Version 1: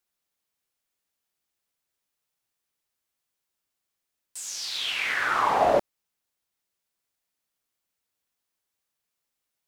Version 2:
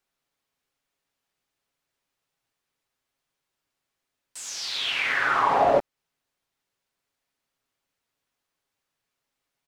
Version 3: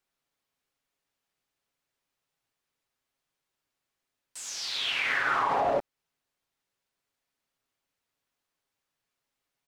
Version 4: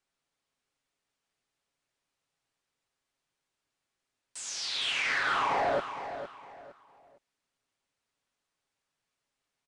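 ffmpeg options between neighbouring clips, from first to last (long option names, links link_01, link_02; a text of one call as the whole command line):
ffmpeg -i in.wav -af "acompressor=threshold=-30dB:ratio=1.5,lowpass=frequency=3400:poles=1,aecho=1:1:7.3:0.31,volume=5.5dB" out.wav
ffmpeg -i in.wav -af "alimiter=limit=-15dB:level=0:latency=1:release=66,volume=-2.5dB" out.wav
ffmpeg -i in.wav -filter_complex "[0:a]asoftclip=type=tanh:threshold=-22dB,asplit=2[link_01][link_02];[link_02]aecho=0:1:460|920|1380:0.299|0.0866|0.0251[link_03];[link_01][link_03]amix=inputs=2:normalize=0,aresample=22050,aresample=44100" out.wav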